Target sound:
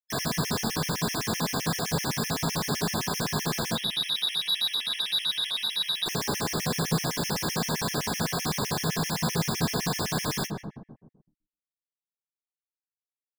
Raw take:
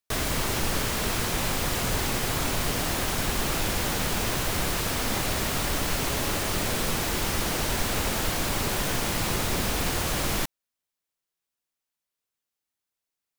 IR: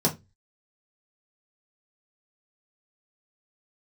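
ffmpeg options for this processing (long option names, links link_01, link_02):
-filter_complex "[0:a]acrusher=bits=4:mix=0:aa=0.5,highshelf=frequency=2900:gain=-10.5,asettb=1/sr,asplit=3[link_01][link_02][link_03];[link_01]atrim=end=3.754[link_04];[link_02]atrim=start=3.75:end=6.06,asetpts=PTS-STARTPTS,afade=type=in:duration=0.004:curve=qsin,afade=type=out:start_time=2.306:duration=0.004:curve=qsin,lowpass=frequency=3300:width_type=q:width=0.5098,lowpass=frequency=3300:width_type=q:width=0.6013,lowpass=frequency=3300:width_type=q:width=0.9,lowpass=frequency=3300:width_type=q:width=2.563,afreqshift=-3900[link_05];[link_03]atrim=start=6.056[link_06];[link_04][link_05]acrossfade=duration=0.004:curve1=hsin:curve2=qsin[link_07];[link_07][link_06]acrossfade=duration=0.004:curve1=qsin:curve2=hsin,tiltshelf=frequency=1300:gain=-9,asoftclip=type=tanh:threshold=-23dB,asplit=2[link_08][link_09];[link_09]adelay=155,lowpass=frequency=910:poles=1,volume=-10dB,asplit=2[link_10][link_11];[link_11]adelay=155,lowpass=frequency=910:poles=1,volume=0.48,asplit=2[link_12][link_13];[link_13]adelay=155,lowpass=frequency=910:poles=1,volume=0.48,asplit=2[link_14][link_15];[link_15]adelay=155,lowpass=frequency=910:poles=1,volume=0.48,asplit=2[link_16][link_17];[link_17]adelay=155,lowpass=frequency=910:poles=1,volume=0.48[link_18];[link_08][link_10][link_12][link_14][link_16][link_18]amix=inputs=6:normalize=0,alimiter=level_in=6.5dB:limit=-24dB:level=0:latency=1:release=76,volume=-6.5dB,asplit=2[link_19][link_20];[link_20]adelay=36,volume=-11dB[link_21];[link_19][link_21]amix=inputs=2:normalize=0,bandreject=frequency=50.82:width_type=h:width=4,bandreject=frequency=101.64:width_type=h:width=4,bandreject=frequency=152.46:width_type=h:width=4,bandreject=frequency=203.28:width_type=h:width=4,bandreject=frequency=254.1:width_type=h:width=4,bandreject=frequency=304.92:width_type=h:width=4,bandreject=frequency=355.74:width_type=h:width=4,bandreject=frequency=406.56:width_type=h:width=4[link_22];[1:a]atrim=start_sample=2205[link_23];[link_22][link_23]afir=irnorm=-1:irlink=0,afftfilt=real='re*gt(sin(2*PI*7.8*pts/sr)*(1-2*mod(floor(b*sr/1024/1700),2)),0)':imag='im*gt(sin(2*PI*7.8*pts/sr)*(1-2*mod(floor(b*sr/1024/1700),2)),0)':win_size=1024:overlap=0.75"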